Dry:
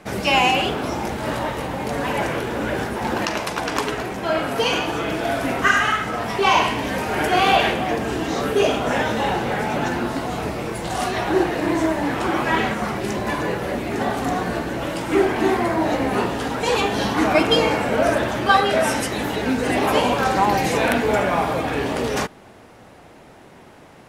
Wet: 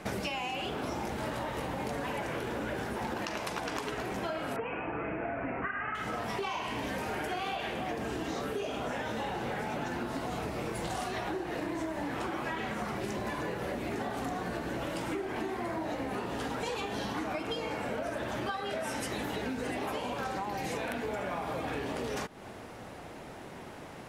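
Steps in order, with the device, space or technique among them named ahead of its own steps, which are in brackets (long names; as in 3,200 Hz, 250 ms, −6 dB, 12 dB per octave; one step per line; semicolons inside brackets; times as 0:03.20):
serial compression, leveller first (downward compressor 2.5 to 1, threshold −21 dBFS, peak gain reduction 7.5 dB; downward compressor 10 to 1, threshold −32 dBFS, peak gain reduction 15.5 dB)
0:04.56–0:05.95: Butterworth low-pass 2,600 Hz 72 dB per octave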